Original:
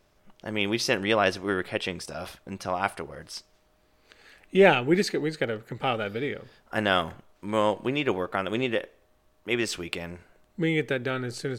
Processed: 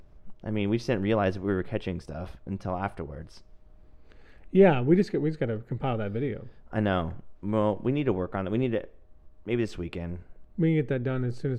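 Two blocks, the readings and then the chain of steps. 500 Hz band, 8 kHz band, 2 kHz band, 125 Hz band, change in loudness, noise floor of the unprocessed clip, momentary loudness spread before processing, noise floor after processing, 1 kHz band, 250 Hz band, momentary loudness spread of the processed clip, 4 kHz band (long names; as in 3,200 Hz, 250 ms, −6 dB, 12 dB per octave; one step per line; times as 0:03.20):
−1.0 dB, below −15 dB, −9.0 dB, +6.0 dB, −1.0 dB, −65 dBFS, 17 LU, −54 dBFS, −5.0 dB, +2.5 dB, 15 LU, −12.5 dB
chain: spectral tilt −4 dB per octave
upward compression, threshold −39 dBFS
level −5.5 dB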